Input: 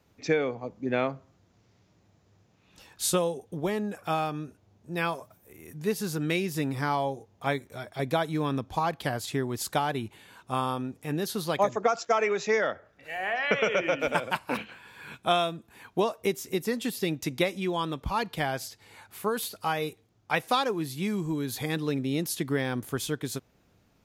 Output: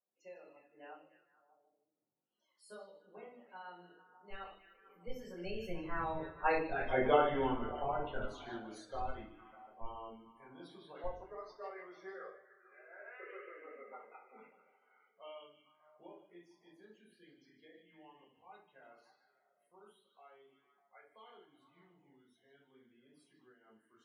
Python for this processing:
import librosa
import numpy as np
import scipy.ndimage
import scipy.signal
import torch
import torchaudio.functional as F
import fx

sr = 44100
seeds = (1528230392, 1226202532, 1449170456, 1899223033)

p1 = fx.doppler_pass(x, sr, speed_mps=47, closest_m=8.9, pass_at_s=6.85)
p2 = scipy.signal.sosfilt(scipy.signal.butter(2, 350.0, 'highpass', fs=sr, output='sos'), p1)
p3 = fx.high_shelf(p2, sr, hz=6400.0, db=-3.5)
p4 = fx.schmitt(p3, sr, flips_db=-40.5)
p5 = p3 + (p4 * librosa.db_to_amplitude(-3.0))
p6 = fx.spec_topn(p5, sr, count=32)
p7 = p6 + fx.echo_stepped(p6, sr, ms=149, hz=3600.0, octaves=-0.7, feedback_pct=70, wet_db=-7.0, dry=0)
p8 = fx.room_shoebox(p7, sr, seeds[0], volume_m3=470.0, walls='furnished', distance_m=5.3)
p9 = fx.am_noise(p8, sr, seeds[1], hz=5.7, depth_pct=60)
y = p9 * librosa.db_to_amplitude(-1.0)